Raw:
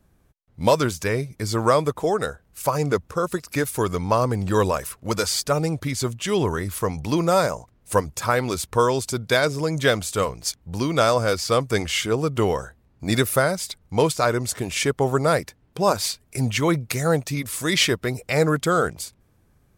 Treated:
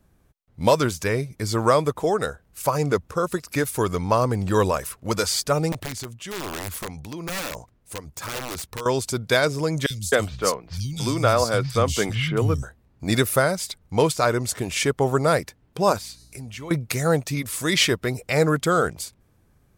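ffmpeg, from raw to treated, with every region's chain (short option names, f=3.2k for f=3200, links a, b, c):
-filter_complex "[0:a]asettb=1/sr,asplit=3[a][b][c];[a]atrim=end=5.724[d];[b]atrim=start=5.72:end=8.86,asetpts=PTS-STARTPTS,afade=t=in:d=0.004:c=qsin,afade=t=out:st=3.136:d=0.004:c=qsin,acompressor=threshold=-27dB:ratio=2.5:attack=3.2:release=140:knee=1:detection=peak,tremolo=f=1.1:d=0.52,aeval=exprs='(mod(15.8*val(0)+1,2)-1)/15.8':c=same[e];[c]atrim=start=8.856[f];[d][e]acrossfade=d=0.004:c1=hsin:c2=qsin[g];[g][f]acrossfade=d=0.004:c1=qsin:c2=hsin,asettb=1/sr,asplit=3[h][i][j];[h]atrim=end=9.864[k];[i]atrim=start=9.86:end=12.63,asetpts=PTS-STARTPTS,afade=t=in:d=0.004:c=qsin,afade=t=out:st=2.766:d=0.004:c=qsin,asubboost=boost=3:cutoff=220,acrossover=split=170|3400[l][m][n];[l]adelay=40[o];[m]adelay=260[p];[o][p][n]amix=inputs=3:normalize=0,atrim=end_sample=122157[q];[j]atrim=start=12.626[r];[k][q]acrossfade=d=0.004:c1=hsin:c2=qsin[s];[s][r]acrossfade=d=0.004:c1=qsin:c2=hsin,asettb=1/sr,asplit=3[t][u][v];[t]atrim=end=15.984[w];[u]atrim=start=15.98:end=16.71,asetpts=PTS-STARTPTS,afade=t=in:d=0.004:c=qsin,afade=t=out:st=0.726:d=0.004:c=qsin,bandreject=f=326.8:t=h:w=4,bandreject=f=653.6:t=h:w=4,bandreject=f=980.4:t=h:w=4,bandreject=f=1.3072k:t=h:w=4,bandreject=f=1.634k:t=h:w=4,bandreject=f=1.9608k:t=h:w=4,bandreject=f=2.2876k:t=h:w=4,bandreject=f=2.6144k:t=h:w=4,bandreject=f=2.9412k:t=h:w=4,bandreject=f=3.268k:t=h:w=4,bandreject=f=3.5948k:t=h:w=4,bandreject=f=3.9216k:t=h:w=4,bandreject=f=4.2484k:t=h:w=4,bandreject=f=4.5752k:t=h:w=4,bandreject=f=4.902k:t=h:w=4,bandreject=f=5.2288k:t=h:w=4,bandreject=f=5.5556k:t=h:w=4,bandreject=f=5.8824k:t=h:w=4,bandreject=f=6.2092k:t=h:w=4,bandreject=f=6.536k:t=h:w=4,bandreject=f=6.8628k:t=h:w=4,bandreject=f=7.1896k:t=h:w=4,bandreject=f=7.5164k:t=h:w=4,bandreject=f=7.8432k:t=h:w=4,bandreject=f=8.17k:t=h:w=4,bandreject=f=8.4968k:t=h:w=4,bandreject=f=8.8236k:t=h:w=4,bandreject=f=9.1504k:t=h:w=4,bandreject=f=9.4772k:t=h:w=4,bandreject=f=9.804k:t=h:w=4,bandreject=f=10.1308k:t=h:w=4,bandreject=f=10.4576k:t=h:w=4,bandreject=f=10.7844k:t=h:w=4,bandreject=f=11.1112k:t=h:w=4,bandreject=f=11.438k:t=h:w=4,bandreject=f=11.7648k:t=h:w=4,bandreject=f=12.0916k:t=h:w=4,bandreject=f=12.4184k:t=h:w=4,bandreject=f=12.7452k:t=h:w=4,acompressor=threshold=-40dB:ratio=2.5:attack=3.2:release=140:knee=1:detection=peak,aeval=exprs='val(0)+0.00224*(sin(2*PI*60*n/s)+sin(2*PI*2*60*n/s)/2+sin(2*PI*3*60*n/s)/3+sin(2*PI*4*60*n/s)/4+sin(2*PI*5*60*n/s)/5)':c=same[x];[v]atrim=start=16.706[y];[w][x]acrossfade=d=0.004:c1=hsin:c2=qsin[z];[z][y]acrossfade=d=0.004:c1=qsin:c2=hsin"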